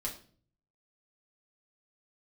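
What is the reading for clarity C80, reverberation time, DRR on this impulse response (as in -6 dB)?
14.5 dB, 0.45 s, -3.0 dB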